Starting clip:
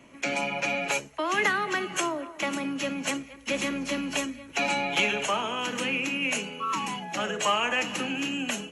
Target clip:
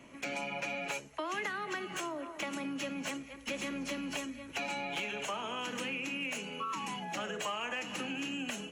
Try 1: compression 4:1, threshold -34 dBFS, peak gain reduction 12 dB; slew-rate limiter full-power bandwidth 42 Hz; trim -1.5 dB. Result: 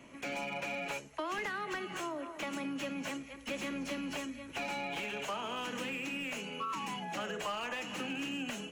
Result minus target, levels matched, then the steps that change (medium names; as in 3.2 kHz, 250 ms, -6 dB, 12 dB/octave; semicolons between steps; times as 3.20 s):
slew-rate limiter: distortion +9 dB
change: slew-rate limiter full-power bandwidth 86.5 Hz